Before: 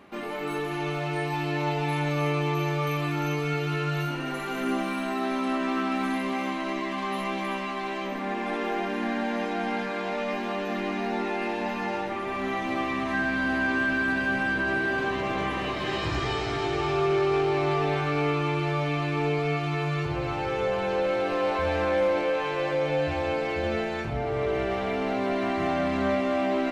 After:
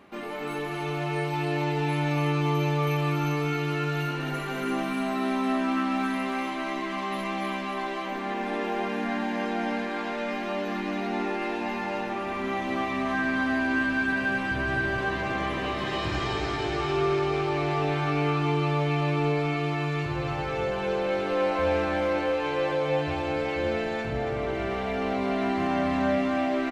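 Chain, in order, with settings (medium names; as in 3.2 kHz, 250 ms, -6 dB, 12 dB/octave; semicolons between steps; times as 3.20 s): 14.51–14.99 s: resonant low shelf 170 Hz +8.5 dB, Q 1.5; feedback delay 280 ms, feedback 43%, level -6.5 dB; trim -1.5 dB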